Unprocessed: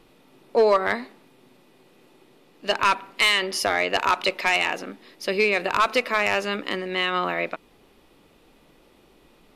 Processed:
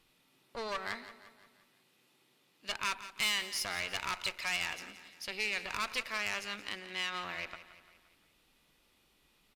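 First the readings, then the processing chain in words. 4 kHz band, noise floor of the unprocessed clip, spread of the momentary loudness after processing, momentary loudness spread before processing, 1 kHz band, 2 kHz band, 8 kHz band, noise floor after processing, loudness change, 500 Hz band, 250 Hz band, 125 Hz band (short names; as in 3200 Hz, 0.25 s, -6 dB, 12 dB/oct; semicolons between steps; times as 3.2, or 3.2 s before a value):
-9.5 dB, -57 dBFS, 11 LU, 11 LU, -17.0 dB, -12.0 dB, -5.5 dB, -71 dBFS, -13.0 dB, -22.5 dB, -18.0 dB, -13.5 dB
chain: one diode to ground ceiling -26.5 dBFS; passive tone stack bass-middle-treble 5-5-5; on a send: feedback echo 0.173 s, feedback 51%, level -14 dB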